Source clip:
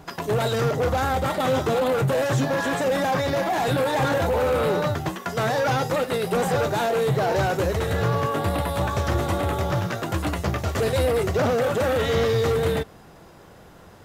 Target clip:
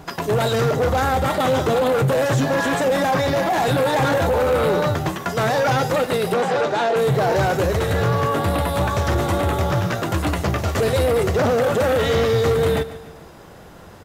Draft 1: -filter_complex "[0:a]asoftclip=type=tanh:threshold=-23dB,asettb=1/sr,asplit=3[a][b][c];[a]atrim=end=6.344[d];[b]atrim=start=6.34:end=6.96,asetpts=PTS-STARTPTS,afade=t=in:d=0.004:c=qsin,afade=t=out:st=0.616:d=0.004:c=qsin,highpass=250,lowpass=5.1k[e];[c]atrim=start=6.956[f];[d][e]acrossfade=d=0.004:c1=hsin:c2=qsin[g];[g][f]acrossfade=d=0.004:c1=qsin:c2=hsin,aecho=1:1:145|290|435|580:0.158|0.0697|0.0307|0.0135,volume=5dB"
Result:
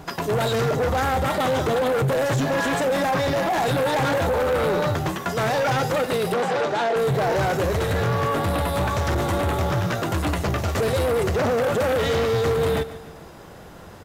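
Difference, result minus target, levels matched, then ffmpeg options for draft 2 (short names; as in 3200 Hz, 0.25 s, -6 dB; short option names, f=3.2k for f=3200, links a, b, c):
soft clip: distortion +8 dB
-filter_complex "[0:a]asoftclip=type=tanh:threshold=-16dB,asettb=1/sr,asplit=3[a][b][c];[a]atrim=end=6.344[d];[b]atrim=start=6.34:end=6.96,asetpts=PTS-STARTPTS,afade=t=in:d=0.004:c=qsin,afade=t=out:st=0.616:d=0.004:c=qsin,highpass=250,lowpass=5.1k[e];[c]atrim=start=6.956[f];[d][e]acrossfade=d=0.004:c1=hsin:c2=qsin[g];[g][f]acrossfade=d=0.004:c1=qsin:c2=hsin,aecho=1:1:145|290|435|580:0.158|0.0697|0.0307|0.0135,volume=5dB"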